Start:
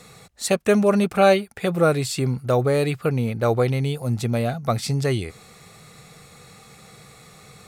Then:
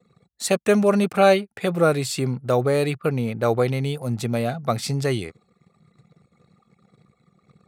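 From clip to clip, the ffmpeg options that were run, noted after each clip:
-af "anlmdn=0.251,highpass=120"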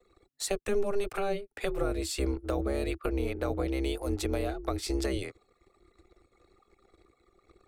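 -filter_complex "[0:a]acrossover=split=310[s0][s1];[s0]aeval=exprs='val(0)*sin(2*PI*200*n/s)':c=same[s2];[s1]acompressor=threshold=0.0355:ratio=10[s3];[s2][s3]amix=inputs=2:normalize=0,volume=0.794"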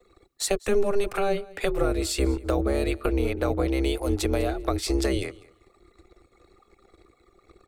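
-af "aecho=1:1:198|396:0.0794|0.0127,volume=2"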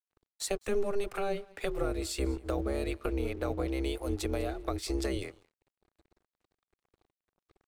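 -af "aeval=exprs='sgn(val(0))*max(abs(val(0))-0.00282,0)':c=same,volume=0.422"

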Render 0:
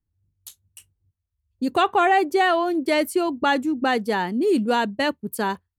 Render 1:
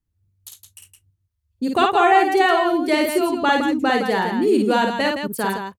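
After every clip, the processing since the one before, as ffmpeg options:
-af "aecho=1:1:52|165:0.668|0.447,volume=1.12"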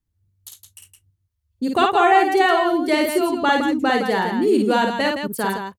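-af "bandreject=f=2500:w=25"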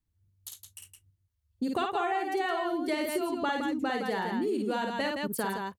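-af "acompressor=threshold=0.0631:ratio=6,volume=0.668"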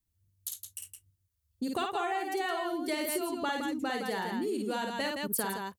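-af "highshelf=f=4800:g=10.5,volume=0.708"

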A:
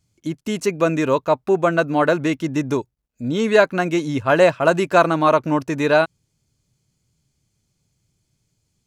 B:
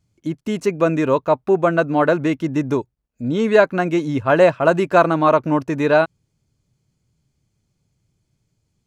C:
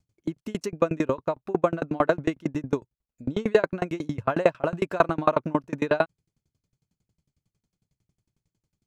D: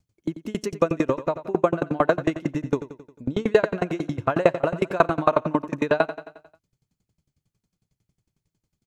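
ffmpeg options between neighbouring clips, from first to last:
-af "highshelf=f=2800:g=-8.5,volume=1.19"
-af "aeval=exprs='val(0)*pow(10,-31*if(lt(mod(11*n/s,1),2*abs(11)/1000),1-mod(11*n/s,1)/(2*abs(11)/1000),(mod(11*n/s,1)-2*abs(11)/1000)/(1-2*abs(11)/1000))/20)':c=same"
-af "aecho=1:1:89|178|267|356|445|534:0.224|0.125|0.0702|0.0393|0.022|0.0123,volume=1.26"

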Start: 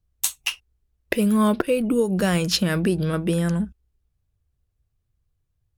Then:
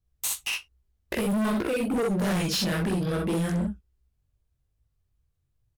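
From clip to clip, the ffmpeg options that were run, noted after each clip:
-af "flanger=delay=17:depth=5.8:speed=2.5,aecho=1:1:46|61:0.531|0.531,asoftclip=type=hard:threshold=0.0668"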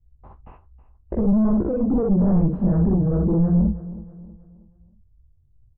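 -af "lowpass=f=1000:w=0.5412,lowpass=f=1000:w=1.3066,aemphasis=mode=reproduction:type=riaa,aecho=1:1:319|638|957|1276:0.15|0.0613|0.0252|0.0103"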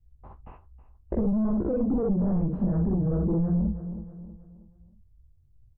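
-af "acompressor=threshold=0.1:ratio=6,volume=0.841"

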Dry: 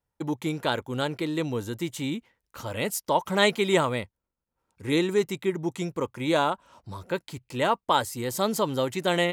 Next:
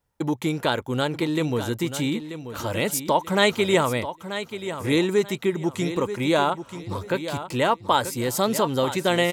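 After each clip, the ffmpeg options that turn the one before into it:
-filter_complex "[0:a]asplit=2[s0][s1];[s1]acompressor=threshold=0.0251:ratio=6,volume=1.33[s2];[s0][s2]amix=inputs=2:normalize=0,aecho=1:1:935|1870|2805:0.282|0.0761|0.0205"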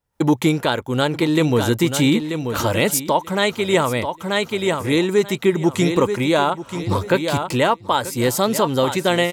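-af "dynaudnorm=f=110:g=3:m=6.31,volume=0.631"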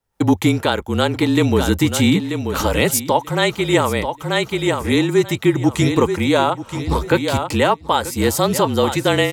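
-af "afreqshift=-33,volume=1.19"

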